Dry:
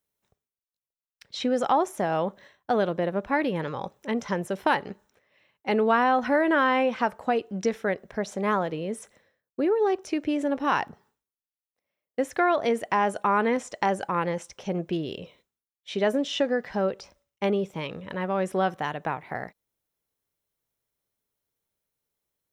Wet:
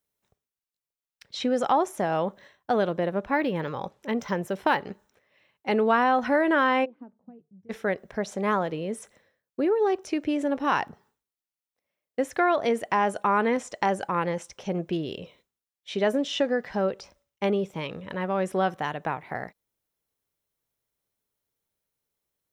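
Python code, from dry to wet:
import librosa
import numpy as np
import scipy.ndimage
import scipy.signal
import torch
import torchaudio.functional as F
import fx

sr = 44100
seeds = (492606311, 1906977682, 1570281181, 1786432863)

y = fx.resample_linear(x, sr, factor=2, at=(3.2, 4.86))
y = fx.bandpass_q(y, sr, hz=fx.line((6.84, 360.0), (7.69, 110.0)), q=12.0, at=(6.84, 7.69), fade=0.02)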